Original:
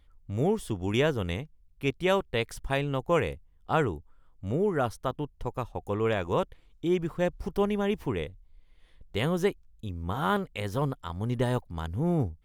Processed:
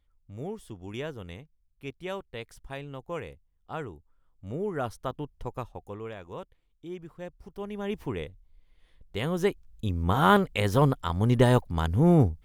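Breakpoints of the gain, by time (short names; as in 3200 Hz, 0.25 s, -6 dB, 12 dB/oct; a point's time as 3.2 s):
3.93 s -10.5 dB
4.98 s -2.5 dB
5.59 s -2.5 dB
6.12 s -13 dB
7.55 s -13 dB
7.96 s -2.5 dB
9.25 s -2.5 dB
9.87 s +7 dB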